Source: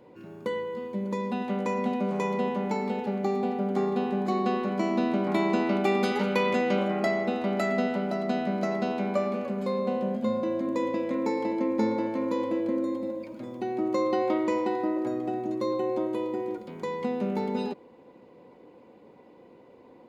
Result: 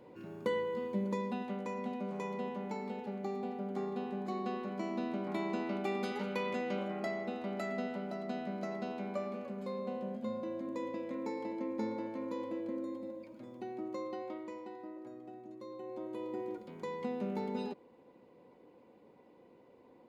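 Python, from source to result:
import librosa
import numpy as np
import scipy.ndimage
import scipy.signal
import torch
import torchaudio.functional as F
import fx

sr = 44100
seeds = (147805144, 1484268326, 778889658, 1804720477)

y = fx.gain(x, sr, db=fx.line((0.96, -2.5), (1.63, -11.0), (13.62, -11.0), (14.57, -19.0), (15.69, -19.0), (16.38, -8.0)))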